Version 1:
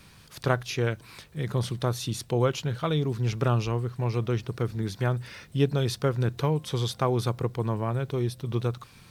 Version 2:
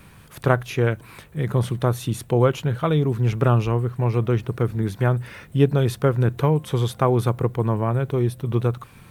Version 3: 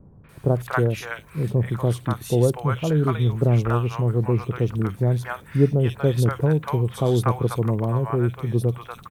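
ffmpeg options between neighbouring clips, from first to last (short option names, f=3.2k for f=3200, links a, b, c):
-af "equalizer=f=4.9k:w=1.1:g=-12.5,volume=6.5dB"
-filter_complex "[0:a]acrossover=split=740|2800[a][b][c];[b]adelay=240[d];[c]adelay=290[e];[a][d][e]amix=inputs=3:normalize=0"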